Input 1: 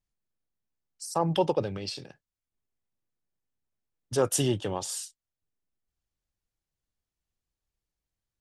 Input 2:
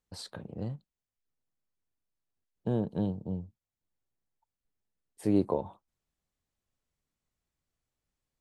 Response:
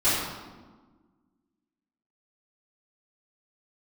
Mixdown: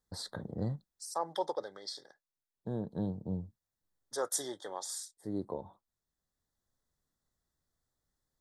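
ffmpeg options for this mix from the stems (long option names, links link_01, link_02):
-filter_complex "[0:a]highpass=560,volume=-5.5dB,asplit=2[link_01][link_02];[1:a]volume=1.5dB[link_03];[link_02]apad=whole_len=370536[link_04];[link_03][link_04]sidechaincompress=threshold=-50dB:ratio=6:attack=5.1:release=1370[link_05];[link_01][link_05]amix=inputs=2:normalize=0,asuperstop=centerf=2600:order=12:qfactor=2.1"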